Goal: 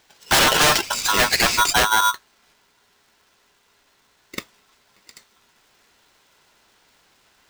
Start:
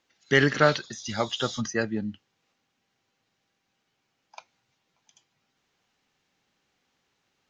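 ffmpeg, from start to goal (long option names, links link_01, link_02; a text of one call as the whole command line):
ffmpeg -i in.wav -af "aeval=exprs='0.596*sin(PI/2*7.94*val(0)/0.596)':channel_layout=same,aeval=exprs='val(0)*sgn(sin(2*PI*1200*n/s))':channel_layout=same,volume=-7dB" out.wav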